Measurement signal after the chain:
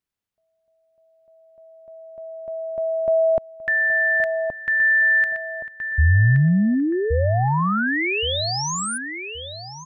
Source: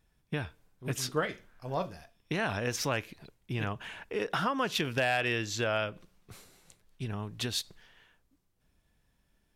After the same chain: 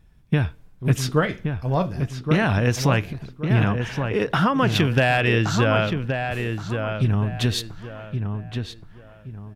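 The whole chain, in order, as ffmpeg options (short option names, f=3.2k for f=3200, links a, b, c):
-filter_complex "[0:a]bass=f=250:g=9,treble=f=4k:g=-5,asplit=2[a][b];[b]adelay=1122,lowpass=f=2.4k:p=1,volume=-6dB,asplit=2[c][d];[d]adelay=1122,lowpass=f=2.4k:p=1,volume=0.3,asplit=2[e][f];[f]adelay=1122,lowpass=f=2.4k:p=1,volume=0.3,asplit=2[g][h];[h]adelay=1122,lowpass=f=2.4k:p=1,volume=0.3[i];[a][c][e][g][i]amix=inputs=5:normalize=0,volume=8.5dB"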